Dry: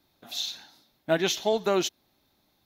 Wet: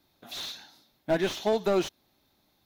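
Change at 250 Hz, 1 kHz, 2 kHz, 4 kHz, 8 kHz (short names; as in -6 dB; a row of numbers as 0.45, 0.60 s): 0.0, -2.0, -3.0, -5.5, -8.5 dB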